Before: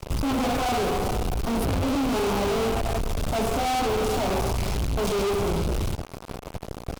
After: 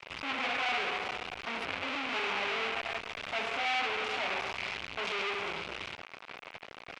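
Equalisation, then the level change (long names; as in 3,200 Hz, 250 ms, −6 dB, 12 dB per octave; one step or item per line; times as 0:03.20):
resonant band-pass 2,300 Hz, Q 2.1
high-frequency loss of the air 82 metres
+6.0 dB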